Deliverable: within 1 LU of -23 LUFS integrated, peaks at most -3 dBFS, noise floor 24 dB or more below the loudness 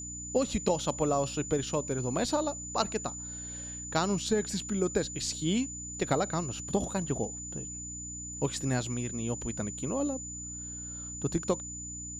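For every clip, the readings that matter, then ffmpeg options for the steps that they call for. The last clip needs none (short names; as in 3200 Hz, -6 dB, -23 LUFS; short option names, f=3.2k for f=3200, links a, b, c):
hum 60 Hz; harmonics up to 300 Hz; hum level -43 dBFS; steady tone 7000 Hz; tone level -39 dBFS; loudness -32.0 LUFS; peak -13.5 dBFS; loudness target -23.0 LUFS
-> -af "bandreject=f=60:t=h:w=4,bandreject=f=120:t=h:w=4,bandreject=f=180:t=h:w=4,bandreject=f=240:t=h:w=4,bandreject=f=300:t=h:w=4"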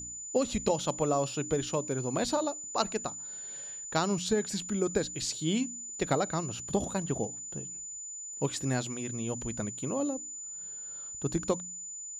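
hum none; steady tone 7000 Hz; tone level -39 dBFS
-> -af "bandreject=f=7k:w=30"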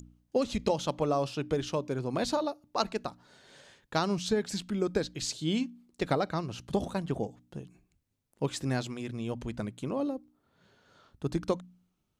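steady tone none; loudness -32.5 LUFS; peak -13.5 dBFS; loudness target -23.0 LUFS
-> -af "volume=9.5dB"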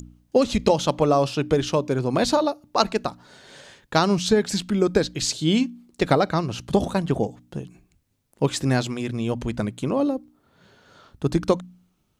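loudness -23.0 LUFS; peak -4.0 dBFS; noise floor -68 dBFS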